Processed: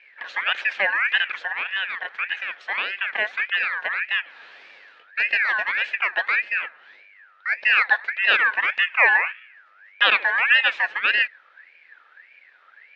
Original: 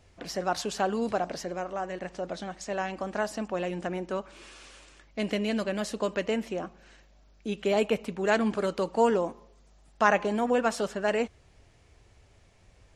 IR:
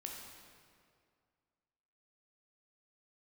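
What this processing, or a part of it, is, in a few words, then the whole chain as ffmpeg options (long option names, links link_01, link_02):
voice changer toy: -af "aeval=exprs='val(0)*sin(2*PI*1800*n/s+1800*0.3/1.7*sin(2*PI*1.7*n/s))':channel_layout=same,highpass=460,equalizer=frequency=530:width_type=q:width=4:gain=4,equalizer=frequency=1100:width_type=q:width=4:gain=-3,equalizer=frequency=1700:width_type=q:width=4:gain=10,equalizer=frequency=2500:width_type=q:width=4:gain=7,lowpass=frequency=3800:width=0.5412,lowpass=frequency=3800:width=1.3066,volume=4dB"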